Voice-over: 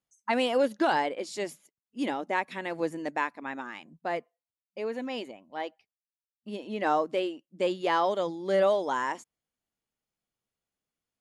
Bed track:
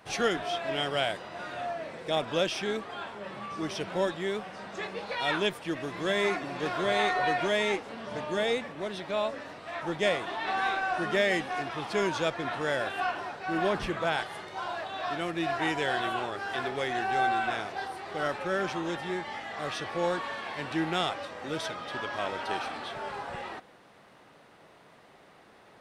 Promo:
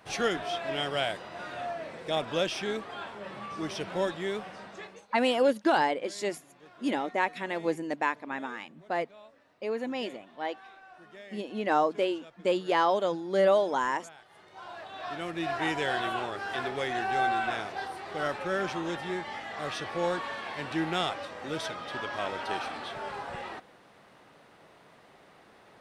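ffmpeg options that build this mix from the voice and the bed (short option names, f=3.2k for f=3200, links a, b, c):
-filter_complex "[0:a]adelay=4850,volume=1dB[a];[1:a]volume=21dB,afade=t=out:st=4.48:d=0.59:silence=0.0841395,afade=t=in:st=14.21:d=1.47:silence=0.0794328[b];[a][b]amix=inputs=2:normalize=0"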